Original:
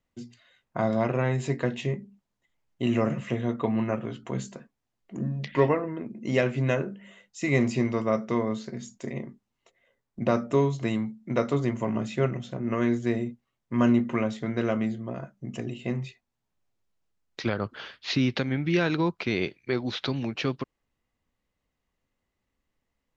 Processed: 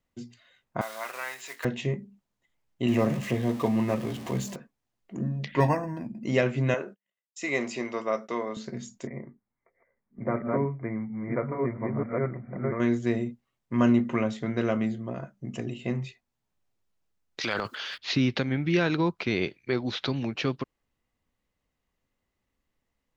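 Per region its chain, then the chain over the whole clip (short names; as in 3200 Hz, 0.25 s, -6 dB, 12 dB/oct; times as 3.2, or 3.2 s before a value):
0.81–1.65 block floating point 5-bit + Chebyshev high-pass 1300 Hz
2.88–4.56 zero-crossing step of -35.5 dBFS + HPF 50 Hz + notch 1400 Hz, Q 5.5
5.6–6.24 comb 1.2 ms, depth 77% + decimation joined by straight lines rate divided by 6×
6.74–8.57 Bessel high-pass 470 Hz + gate -49 dBFS, range -42 dB
9.07–12.8 reverse delay 0.676 s, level -1.5 dB + brick-wall FIR low-pass 2400 Hz + flange 2 Hz, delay 1.1 ms, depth 1.5 ms, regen -84%
17.41–17.98 tilt +4 dB/oct + transient shaper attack -1 dB, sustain +10 dB
whole clip: dry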